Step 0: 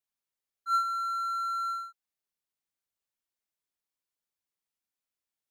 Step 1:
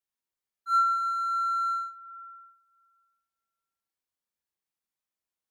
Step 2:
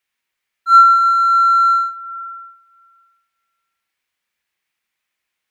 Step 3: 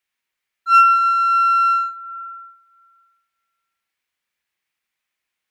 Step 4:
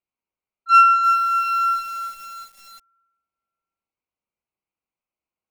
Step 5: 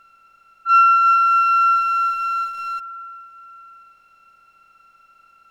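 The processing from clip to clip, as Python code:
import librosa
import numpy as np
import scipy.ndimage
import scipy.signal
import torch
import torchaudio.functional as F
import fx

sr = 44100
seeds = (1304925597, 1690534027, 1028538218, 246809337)

y1 = fx.doubler(x, sr, ms=36.0, db=-11)
y1 = fx.rev_fdn(y1, sr, rt60_s=1.8, lf_ratio=1.0, hf_ratio=0.25, size_ms=87.0, drr_db=2.0)
y1 = y1 * 10.0 ** (-3.0 / 20.0)
y2 = fx.peak_eq(y1, sr, hz=2200.0, db=14.0, octaves=1.5)
y2 = y2 * 10.0 ** (8.0 / 20.0)
y3 = fx.self_delay(y2, sr, depth_ms=0.054)
y3 = y3 * 10.0 ** (-3.0 / 20.0)
y4 = fx.wiener(y3, sr, points=25)
y4 = fx.echo_crushed(y4, sr, ms=348, feedback_pct=55, bits=6, wet_db=-8.5)
y5 = fx.bin_compress(y4, sr, power=0.4)
y5 = fx.lowpass(y5, sr, hz=2000.0, slope=6)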